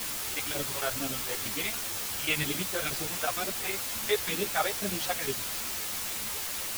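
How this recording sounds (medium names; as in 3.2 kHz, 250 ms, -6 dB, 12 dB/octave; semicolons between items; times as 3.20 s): chopped level 11 Hz, duty 75%; phasing stages 2, 2.1 Hz, lowest notch 210–1100 Hz; a quantiser's noise floor 6-bit, dither triangular; a shimmering, thickened sound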